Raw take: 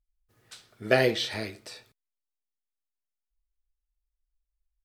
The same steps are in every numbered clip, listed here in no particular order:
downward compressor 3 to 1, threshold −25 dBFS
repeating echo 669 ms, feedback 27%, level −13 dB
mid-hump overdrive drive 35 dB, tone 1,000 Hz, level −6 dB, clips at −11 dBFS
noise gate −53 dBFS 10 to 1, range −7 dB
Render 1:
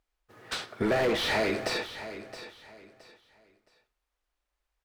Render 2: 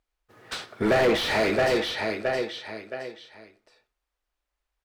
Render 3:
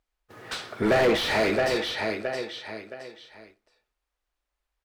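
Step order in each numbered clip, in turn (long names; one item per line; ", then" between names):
noise gate, then mid-hump overdrive, then downward compressor, then repeating echo
noise gate, then repeating echo, then downward compressor, then mid-hump overdrive
downward compressor, then repeating echo, then mid-hump overdrive, then noise gate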